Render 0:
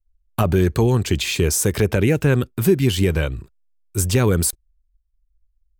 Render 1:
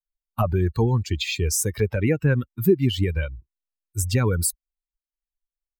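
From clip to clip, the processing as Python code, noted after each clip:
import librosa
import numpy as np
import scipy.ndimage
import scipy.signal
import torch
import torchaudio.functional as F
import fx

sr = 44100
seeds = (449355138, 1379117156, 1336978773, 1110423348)

y = fx.bin_expand(x, sr, power=2.0)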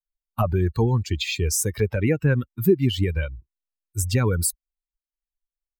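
y = x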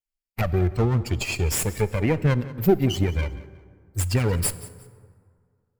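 y = fx.lower_of_two(x, sr, delay_ms=0.41)
y = fx.echo_feedback(y, sr, ms=181, feedback_pct=28, wet_db=-18.5)
y = fx.rev_plate(y, sr, seeds[0], rt60_s=2.1, hf_ratio=0.5, predelay_ms=0, drr_db=15.5)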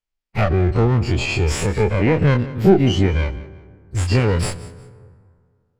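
y = fx.spec_dilate(x, sr, span_ms=60)
y = fx.air_absorb(y, sr, metres=100.0)
y = y * 10.0 ** (3.0 / 20.0)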